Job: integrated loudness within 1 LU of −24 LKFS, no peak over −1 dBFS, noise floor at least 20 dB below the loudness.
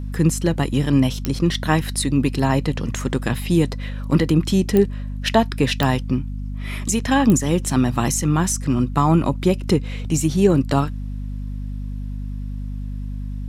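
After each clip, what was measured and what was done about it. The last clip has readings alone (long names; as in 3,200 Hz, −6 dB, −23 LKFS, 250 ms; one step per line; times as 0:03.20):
number of clicks 4; mains hum 50 Hz; hum harmonics up to 250 Hz; level of the hum −25 dBFS; integrated loudness −20.0 LKFS; sample peak −3.5 dBFS; target loudness −24.0 LKFS
→ click removal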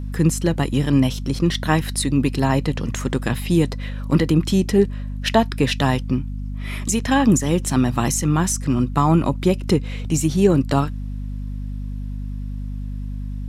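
number of clicks 0; mains hum 50 Hz; hum harmonics up to 250 Hz; level of the hum −25 dBFS
→ hum removal 50 Hz, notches 5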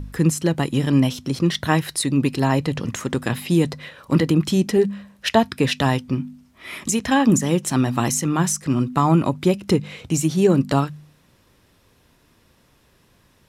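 mains hum none found; integrated loudness −20.5 LKFS; sample peak −4.0 dBFS; target loudness −24.0 LKFS
→ level −3.5 dB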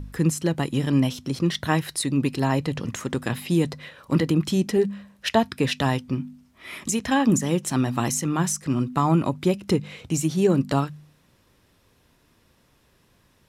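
integrated loudness −24.0 LKFS; sample peak −7.5 dBFS; background noise floor −62 dBFS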